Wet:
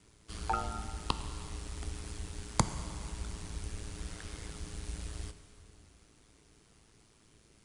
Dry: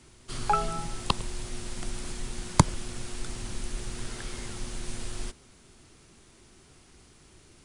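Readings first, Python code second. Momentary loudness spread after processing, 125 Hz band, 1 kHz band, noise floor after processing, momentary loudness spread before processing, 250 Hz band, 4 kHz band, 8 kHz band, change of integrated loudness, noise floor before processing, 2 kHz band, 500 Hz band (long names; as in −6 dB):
12 LU, −6.5 dB, −7.5 dB, −64 dBFS, 12 LU, −8.0 dB, −7.0 dB, −6.5 dB, −6.5 dB, −57 dBFS, −7.0 dB, −8.0 dB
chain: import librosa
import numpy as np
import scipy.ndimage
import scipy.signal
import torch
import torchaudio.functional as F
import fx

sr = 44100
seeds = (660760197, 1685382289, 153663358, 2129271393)

y = x * np.sin(2.0 * np.pi * 55.0 * np.arange(len(x)) / sr)
y = fx.rev_plate(y, sr, seeds[0], rt60_s=2.9, hf_ratio=0.85, predelay_ms=0, drr_db=9.5)
y = y * 10.0 ** (-5.0 / 20.0)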